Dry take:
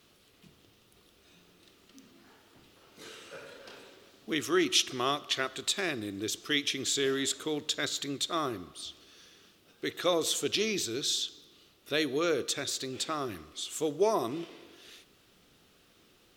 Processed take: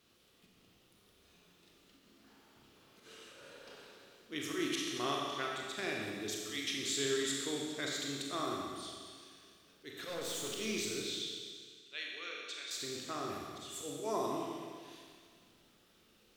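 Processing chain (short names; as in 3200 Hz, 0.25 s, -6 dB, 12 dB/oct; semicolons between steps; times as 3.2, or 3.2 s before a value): auto swell 0.107 s; 9.97–10.49 hard clip -32.5 dBFS, distortion -16 dB; 11.02–12.71 band-pass 2600 Hz, Q 1.5; Schroeder reverb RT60 1.9 s, combs from 29 ms, DRR -1.5 dB; gain -8 dB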